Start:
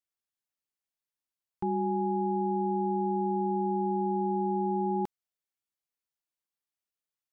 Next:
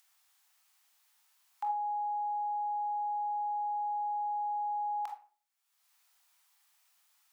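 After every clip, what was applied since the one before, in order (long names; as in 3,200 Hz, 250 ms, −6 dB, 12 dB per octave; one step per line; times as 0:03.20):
Butterworth high-pass 710 Hz 48 dB per octave
upward compression, threshold −57 dBFS
on a send at −3 dB: convolution reverb RT60 0.45 s, pre-delay 23 ms
on the sum: level +2 dB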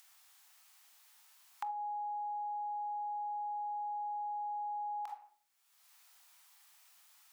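downward compressor 5 to 1, threshold −46 dBFS, peak gain reduction 14.5 dB
level +6.5 dB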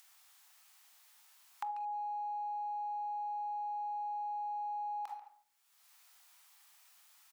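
far-end echo of a speakerphone 140 ms, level −11 dB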